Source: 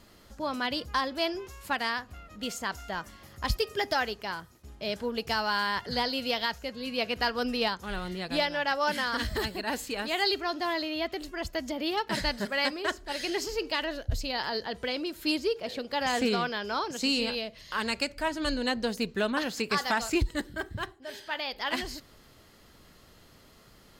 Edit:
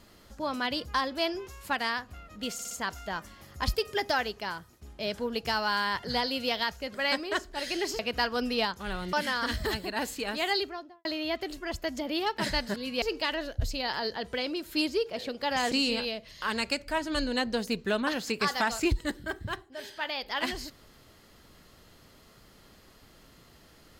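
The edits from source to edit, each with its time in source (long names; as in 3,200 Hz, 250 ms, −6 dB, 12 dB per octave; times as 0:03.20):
0:02.53: stutter 0.06 s, 4 plays
0:06.76–0:07.02: swap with 0:12.47–0:13.52
0:08.16–0:08.84: remove
0:10.16–0:10.76: fade out and dull
0:16.22–0:17.02: remove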